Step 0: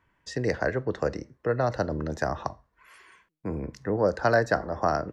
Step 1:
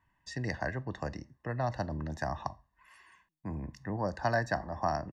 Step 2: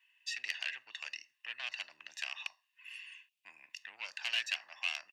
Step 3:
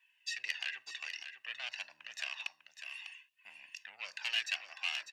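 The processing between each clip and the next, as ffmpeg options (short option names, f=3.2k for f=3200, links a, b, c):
-af "aecho=1:1:1.1:0.69,volume=-7.5dB"
-af "aeval=exprs='(tanh(35.5*val(0)+0.25)-tanh(0.25))/35.5':c=same,highpass=f=2.7k:t=q:w=7.4,volume=3.5dB"
-filter_complex "[0:a]flanger=delay=1.2:depth=1.5:regen=-30:speed=0.54:shape=sinusoidal,asplit=2[a][b];[b]aecho=0:1:599:0.355[c];[a][c]amix=inputs=2:normalize=0,volume=3.5dB"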